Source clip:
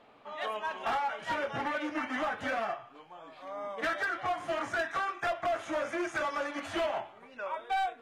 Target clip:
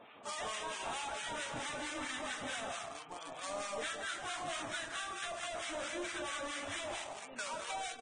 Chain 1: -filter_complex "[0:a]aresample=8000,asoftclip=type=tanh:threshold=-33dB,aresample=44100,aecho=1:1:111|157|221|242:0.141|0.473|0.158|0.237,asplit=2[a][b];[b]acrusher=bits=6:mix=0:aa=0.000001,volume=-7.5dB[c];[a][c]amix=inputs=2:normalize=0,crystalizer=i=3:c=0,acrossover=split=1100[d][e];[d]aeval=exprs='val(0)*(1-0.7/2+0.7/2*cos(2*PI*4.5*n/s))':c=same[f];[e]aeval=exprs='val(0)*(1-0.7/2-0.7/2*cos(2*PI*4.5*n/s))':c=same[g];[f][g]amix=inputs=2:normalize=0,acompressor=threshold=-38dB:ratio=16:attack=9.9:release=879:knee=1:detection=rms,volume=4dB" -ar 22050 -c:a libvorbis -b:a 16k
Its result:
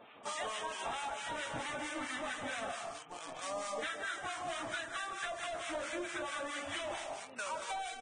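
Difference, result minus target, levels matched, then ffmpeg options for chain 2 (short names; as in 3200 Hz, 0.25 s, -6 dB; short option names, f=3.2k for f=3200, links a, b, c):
soft clip: distortion -6 dB
-filter_complex "[0:a]aresample=8000,asoftclip=type=tanh:threshold=-40.5dB,aresample=44100,aecho=1:1:111|157|221|242:0.141|0.473|0.158|0.237,asplit=2[a][b];[b]acrusher=bits=6:mix=0:aa=0.000001,volume=-7.5dB[c];[a][c]amix=inputs=2:normalize=0,crystalizer=i=3:c=0,acrossover=split=1100[d][e];[d]aeval=exprs='val(0)*(1-0.7/2+0.7/2*cos(2*PI*4.5*n/s))':c=same[f];[e]aeval=exprs='val(0)*(1-0.7/2-0.7/2*cos(2*PI*4.5*n/s))':c=same[g];[f][g]amix=inputs=2:normalize=0,acompressor=threshold=-38dB:ratio=16:attack=9.9:release=879:knee=1:detection=rms,volume=4dB" -ar 22050 -c:a libvorbis -b:a 16k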